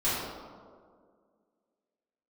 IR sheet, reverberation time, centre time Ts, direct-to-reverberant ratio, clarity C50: 2.0 s, 111 ms, −13.0 dB, −2.0 dB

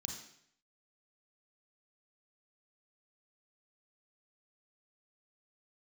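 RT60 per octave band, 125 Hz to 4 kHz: 0.75, 0.70, 0.70, 0.65, 0.70, 0.65 seconds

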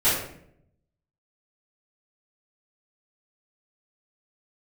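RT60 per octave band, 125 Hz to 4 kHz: 1.2, 0.95, 0.75, 0.55, 0.60, 0.45 seconds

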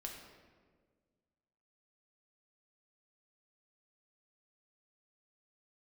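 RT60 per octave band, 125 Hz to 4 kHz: 2.1, 2.1, 1.9, 1.4, 1.2, 0.95 seconds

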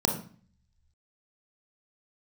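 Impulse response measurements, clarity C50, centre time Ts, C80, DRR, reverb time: 6.5 dB, 23 ms, 11.0 dB, 2.0 dB, 0.45 s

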